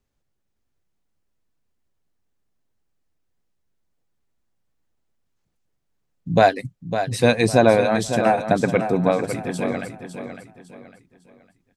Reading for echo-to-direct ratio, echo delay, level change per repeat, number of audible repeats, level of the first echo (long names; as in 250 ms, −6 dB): −8.5 dB, 554 ms, −9.5 dB, 3, −9.0 dB